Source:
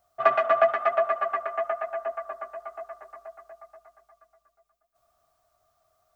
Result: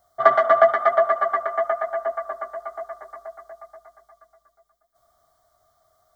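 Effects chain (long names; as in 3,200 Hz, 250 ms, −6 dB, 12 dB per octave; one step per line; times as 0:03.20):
Butterworth band-reject 2,600 Hz, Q 2.9
level +5.5 dB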